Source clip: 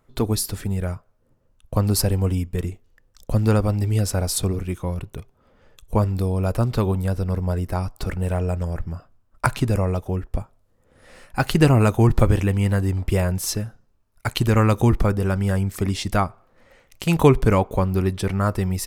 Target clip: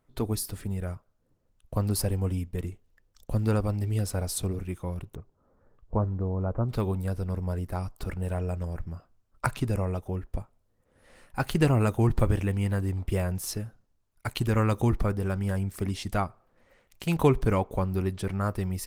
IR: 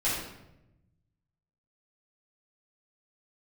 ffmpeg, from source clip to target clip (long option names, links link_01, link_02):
-filter_complex "[0:a]asettb=1/sr,asplit=3[link_01][link_02][link_03];[link_01]atrim=end=5.154[link_04];[link_02]atrim=start=5.15:end=6.69,asetpts=PTS-STARTPTS,afade=type=in:duration=0.004:curve=qsin,afade=type=out:start_time=1.536:duration=0.004:curve=qsin,lowpass=frequency=1400:width=0.5412,lowpass=frequency=1400:width=1.3066[link_05];[link_03]atrim=start=6.686[link_06];[link_04][link_05]acrossfade=duration=0.004:curve1=hsin:curve2=qsin[link_07];[link_07][link_06]acrossfade=duration=0.004:curve1=qsin:curve2=hsin,volume=-7dB" -ar 48000 -c:a libopus -b:a 24k